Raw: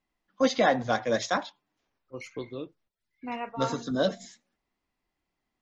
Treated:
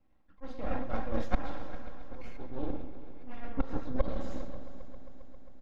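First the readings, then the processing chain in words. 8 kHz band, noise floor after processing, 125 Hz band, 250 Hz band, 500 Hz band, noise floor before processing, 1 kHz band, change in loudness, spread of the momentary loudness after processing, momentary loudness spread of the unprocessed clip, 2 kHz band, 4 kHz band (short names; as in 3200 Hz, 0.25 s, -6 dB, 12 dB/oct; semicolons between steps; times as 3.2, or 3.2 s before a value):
n/a, -62 dBFS, -1.5 dB, -6.5 dB, -11.5 dB, -84 dBFS, -11.0 dB, -11.0 dB, 16 LU, 20 LU, -14.5 dB, -19.5 dB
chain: HPF 53 Hz; two-slope reverb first 0.54 s, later 1.6 s, DRR -1 dB; auto swell 0.416 s; half-wave rectifier; reverse; compressor 5:1, threshold -43 dBFS, peak gain reduction 21.5 dB; reverse; harmonic-percussive split harmonic -9 dB; LPF 2400 Hz 6 dB/oct; tilt -3 dB/oct; comb 3.7 ms, depth 46%; multi-head echo 0.134 s, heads first and third, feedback 71%, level -17.5 dB; gain +10.5 dB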